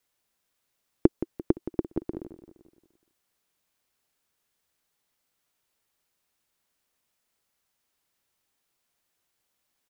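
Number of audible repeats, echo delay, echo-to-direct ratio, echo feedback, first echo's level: 4, 172 ms, -12.0 dB, 48%, -13.0 dB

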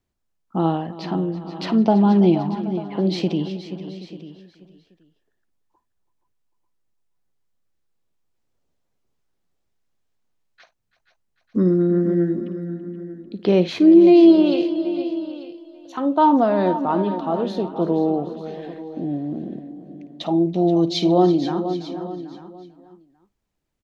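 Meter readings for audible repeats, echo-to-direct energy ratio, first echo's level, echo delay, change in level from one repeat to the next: 8, -8.0 dB, -15.0 dB, 54 ms, no regular repeats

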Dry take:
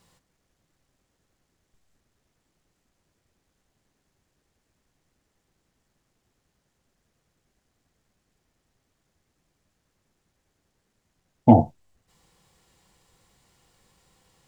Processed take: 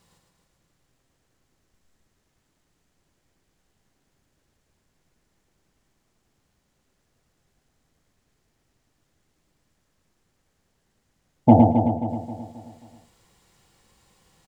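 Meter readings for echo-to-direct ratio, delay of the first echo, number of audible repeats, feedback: -1.5 dB, 110 ms, 11, no regular repeats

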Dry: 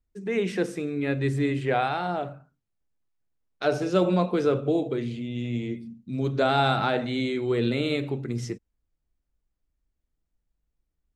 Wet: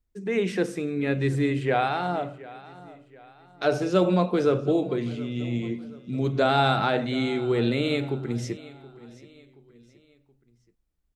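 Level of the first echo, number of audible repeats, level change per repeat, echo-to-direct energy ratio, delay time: -19.0 dB, 3, -7.5 dB, -18.0 dB, 725 ms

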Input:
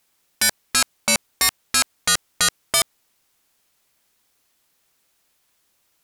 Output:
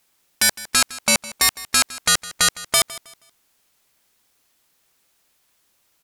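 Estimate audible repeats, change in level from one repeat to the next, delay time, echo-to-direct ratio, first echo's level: 2, -11.0 dB, 159 ms, -17.5 dB, -18.0 dB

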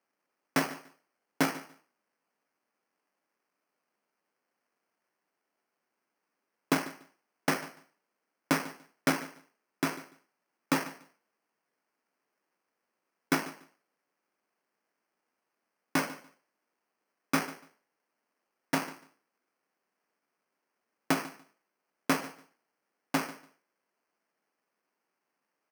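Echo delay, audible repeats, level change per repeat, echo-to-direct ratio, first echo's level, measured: 145 ms, 2, -15.0 dB, -18.0 dB, -18.0 dB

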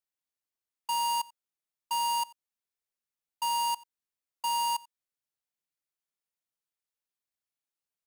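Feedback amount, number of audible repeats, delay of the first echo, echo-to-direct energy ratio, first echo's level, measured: no regular repeats, 1, 89 ms, -23.0 dB, -23.0 dB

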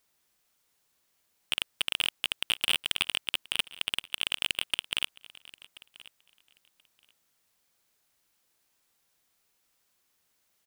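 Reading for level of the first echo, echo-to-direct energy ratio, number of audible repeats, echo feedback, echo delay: -21.0 dB, -21.0 dB, 1, no regular repeats, 1031 ms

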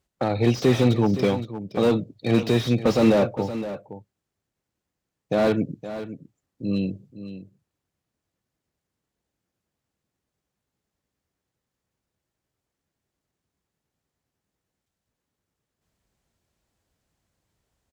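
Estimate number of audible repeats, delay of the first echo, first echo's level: 1, 517 ms, -12.5 dB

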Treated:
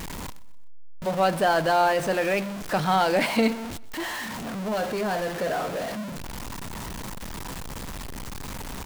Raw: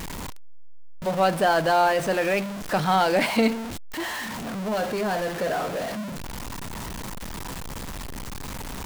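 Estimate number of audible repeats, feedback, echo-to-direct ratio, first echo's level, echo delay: 2, 45%, -20.5 dB, -21.5 dB, 126 ms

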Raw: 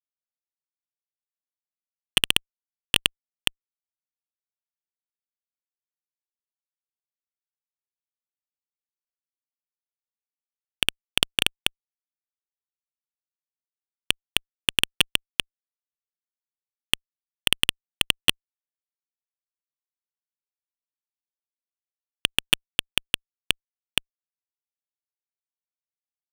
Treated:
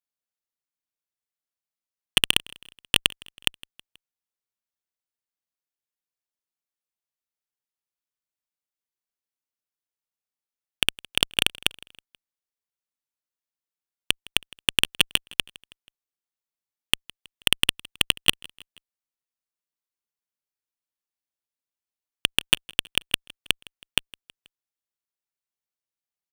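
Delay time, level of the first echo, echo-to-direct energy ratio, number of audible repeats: 161 ms, -24.0 dB, -22.5 dB, 2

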